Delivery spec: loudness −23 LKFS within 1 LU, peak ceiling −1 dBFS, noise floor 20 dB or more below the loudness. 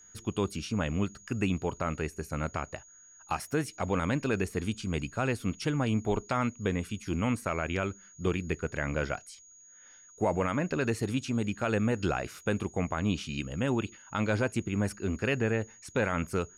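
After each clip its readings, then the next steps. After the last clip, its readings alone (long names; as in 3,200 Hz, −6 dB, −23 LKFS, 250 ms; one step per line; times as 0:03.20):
interfering tone 6,700 Hz; level of the tone −53 dBFS; integrated loudness −31.5 LKFS; sample peak −17.0 dBFS; target loudness −23.0 LKFS
→ notch filter 6,700 Hz, Q 30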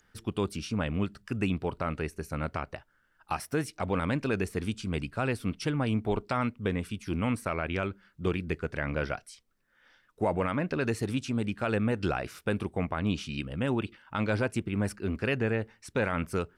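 interfering tone none found; integrated loudness −31.5 LKFS; sample peak −17.0 dBFS; target loudness −23.0 LKFS
→ level +8.5 dB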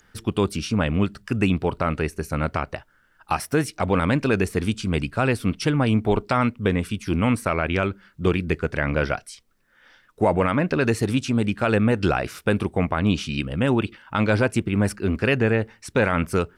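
integrated loudness −23.0 LKFS; sample peak −8.5 dBFS; background noise floor −61 dBFS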